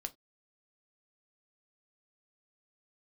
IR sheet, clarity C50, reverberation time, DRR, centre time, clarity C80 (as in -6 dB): 23.0 dB, no single decay rate, 7.5 dB, 4 ms, 33.0 dB